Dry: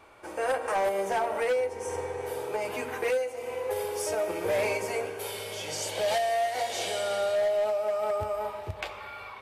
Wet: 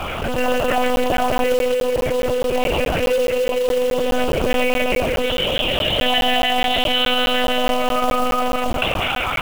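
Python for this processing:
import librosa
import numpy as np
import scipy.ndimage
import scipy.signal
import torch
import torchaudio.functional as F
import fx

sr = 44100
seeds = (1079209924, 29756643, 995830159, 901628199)

y = fx.high_shelf(x, sr, hz=2200.0, db=-3.5)
y = fx.echo_multitap(y, sr, ms=(64, 175, 192, 208, 284, 322), db=(-13.0, -16.5, -12.5, -11.0, -9.0, -19.5))
y = fx.filter_lfo_notch(y, sr, shape='square', hz=6.6, low_hz=980.0, high_hz=2000.0, q=2.0)
y = fx.lpc_monotone(y, sr, seeds[0], pitch_hz=250.0, order=10)
y = fx.quant_float(y, sr, bits=2)
y = fx.peak_eq(y, sr, hz=2900.0, db=11.5, octaves=0.34)
y = fx.buffer_crackle(y, sr, first_s=0.96, period_s=0.21, block=512, kind='zero')
y = fx.env_flatten(y, sr, amount_pct=70)
y = F.gain(torch.from_numpy(y), 7.0).numpy()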